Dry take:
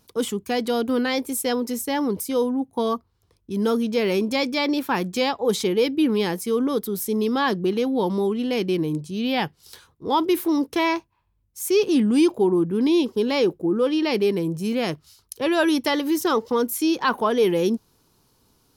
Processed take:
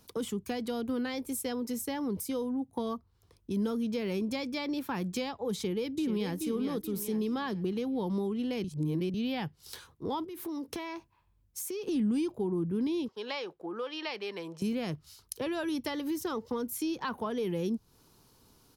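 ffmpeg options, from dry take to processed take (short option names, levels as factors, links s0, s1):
-filter_complex "[0:a]asplit=2[s0][s1];[s1]afade=t=in:st=5.54:d=0.01,afade=t=out:st=6.38:d=0.01,aecho=0:1:430|860|1290|1720|2150:0.398107|0.159243|0.0636971|0.0254789|0.0101915[s2];[s0][s2]amix=inputs=2:normalize=0,asettb=1/sr,asplit=3[s3][s4][s5];[s3]atrim=end=10.244[s6];[s4]atrim=start=10.24:end=11.88,asetpts=PTS-STARTPTS,afade=t=in:d=0.004:c=qsin,afade=t=out:st=1.636:d=0.004:c=qsin,acompressor=threshold=0.0251:ratio=5:attack=3.2:release=140:knee=1:detection=peak[s7];[s5]atrim=start=11.876[s8];[s6][s7]acrossfade=d=0.004:c1=hsin:c2=qsin[s9];[s9][s8]acrossfade=d=0.004:c1=qsin:c2=hsin,asettb=1/sr,asplit=3[s10][s11][s12];[s10]atrim=end=13.084[s13];[s11]atrim=start=13.08:end=14.62,asetpts=PTS-STARTPTS,afade=t=in:d=0.004:c=qsin,afade=t=out:st=1.536:d=0.004:c=qsin,acrossover=split=590 5800:gain=0.0891 1 0.126[s14][s15][s16];[s14][s15][s16]amix=inputs=3:normalize=0[s17];[s12]atrim=start=14.616[s18];[s13][s17]acrossfade=d=0.004:c1=hsin:c2=qsin[s19];[s19][s18]acrossfade=d=0.004:c1=qsin:c2=hsin,asplit=3[s20][s21][s22];[s20]atrim=end=8.642[s23];[s21]atrim=start=8.638:end=9.142,asetpts=PTS-STARTPTS,areverse[s24];[s22]atrim=start=9.138[s25];[s23][s24]acrossfade=d=0.004:c1=hsin:c2=hsin[s26];[s26][s25]acrossfade=d=0.004:c1=hsin:c2=hsin,acrossover=split=160[s27][s28];[s28]acompressor=threshold=0.0178:ratio=4[s29];[s27][s29]amix=inputs=2:normalize=0"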